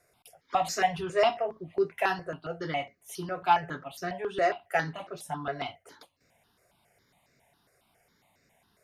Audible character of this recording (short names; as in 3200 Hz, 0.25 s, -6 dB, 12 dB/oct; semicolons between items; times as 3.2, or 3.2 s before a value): notches that jump at a steady rate 7.3 Hz 870–3200 Hz